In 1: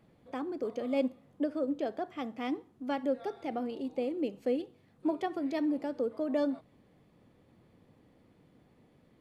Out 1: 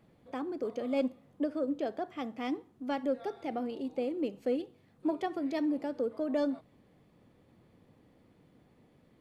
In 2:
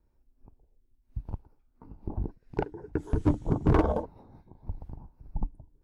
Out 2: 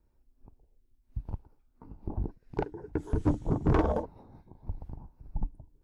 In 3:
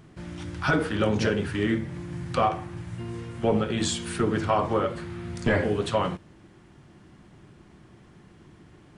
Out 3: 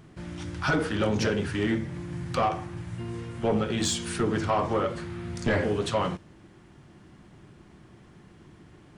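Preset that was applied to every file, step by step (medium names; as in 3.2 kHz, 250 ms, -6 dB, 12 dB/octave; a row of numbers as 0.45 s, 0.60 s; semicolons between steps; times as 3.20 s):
dynamic bell 5.9 kHz, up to +4 dB, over -54 dBFS, Q 1.6; saturation -17 dBFS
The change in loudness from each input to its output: -0.5 LU, -2.5 LU, -1.5 LU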